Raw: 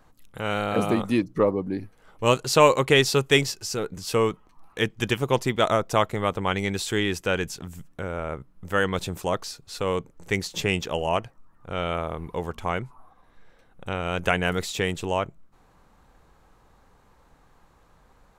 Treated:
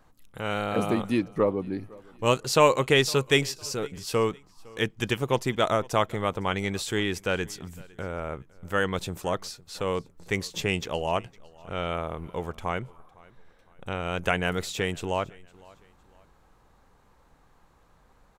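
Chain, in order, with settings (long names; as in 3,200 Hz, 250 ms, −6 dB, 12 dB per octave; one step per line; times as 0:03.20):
repeating echo 508 ms, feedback 36%, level −24 dB
level −2.5 dB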